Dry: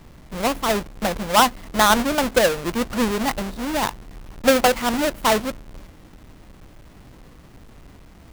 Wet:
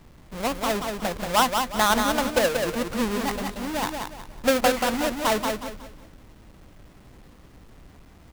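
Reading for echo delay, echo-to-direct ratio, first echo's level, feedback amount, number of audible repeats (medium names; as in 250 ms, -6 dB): 182 ms, -4.5 dB, -5.0 dB, 32%, 4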